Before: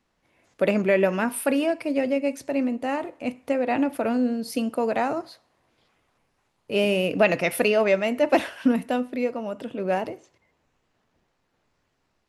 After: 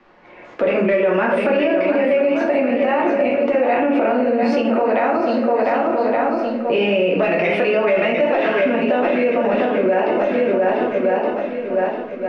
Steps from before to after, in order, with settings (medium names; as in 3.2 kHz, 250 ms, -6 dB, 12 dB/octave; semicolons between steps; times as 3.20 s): hard clipper -11.5 dBFS, distortion -27 dB; low-pass 6.3 kHz 24 dB/octave; on a send: shuffle delay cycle 1168 ms, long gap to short 1.5:1, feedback 31%, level -10.5 dB; on the sum: dynamic bell 2.6 kHz, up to +4 dB, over -42 dBFS, Q 1.3; compression 5:1, threshold -35 dBFS, peak gain reduction 18.5 dB; three-band isolator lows -15 dB, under 230 Hz, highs -18 dB, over 2.6 kHz; simulated room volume 89 m³, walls mixed, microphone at 0.93 m; loudness maximiser +29 dB; trim -8 dB